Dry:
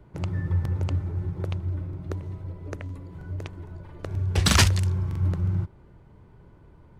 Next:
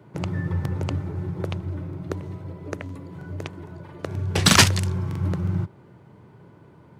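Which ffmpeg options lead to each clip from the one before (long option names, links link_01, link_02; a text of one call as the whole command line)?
ffmpeg -i in.wav -af "highpass=frequency=110:width=0.5412,highpass=frequency=110:width=1.3066,volume=5.5dB" out.wav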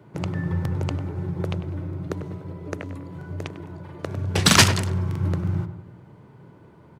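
ffmpeg -i in.wav -filter_complex "[0:a]asplit=2[link_01][link_02];[link_02]adelay=99,lowpass=frequency=1500:poles=1,volume=-8.5dB,asplit=2[link_03][link_04];[link_04]adelay=99,lowpass=frequency=1500:poles=1,volume=0.53,asplit=2[link_05][link_06];[link_06]adelay=99,lowpass=frequency=1500:poles=1,volume=0.53,asplit=2[link_07][link_08];[link_08]adelay=99,lowpass=frequency=1500:poles=1,volume=0.53,asplit=2[link_09][link_10];[link_10]adelay=99,lowpass=frequency=1500:poles=1,volume=0.53,asplit=2[link_11][link_12];[link_12]adelay=99,lowpass=frequency=1500:poles=1,volume=0.53[link_13];[link_01][link_03][link_05][link_07][link_09][link_11][link_13]amix=inputs=7:normalize=0" out.wav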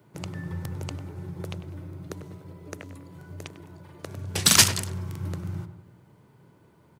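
ffmpeg -i in.wav -af "crystalizer=i=3:c=0,volume=-8.5dB" out.wav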